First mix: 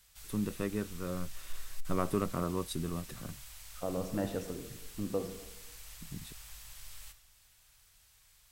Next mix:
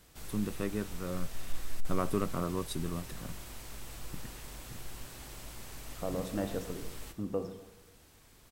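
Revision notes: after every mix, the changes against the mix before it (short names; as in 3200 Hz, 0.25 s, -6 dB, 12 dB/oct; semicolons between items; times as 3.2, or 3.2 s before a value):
second voice: entry +2.20 s; background: remove passive tone stack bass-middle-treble 10-0-10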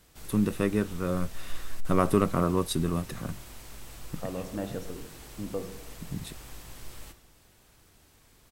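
first voice +8.5 dB; second voice: entry -1.80 s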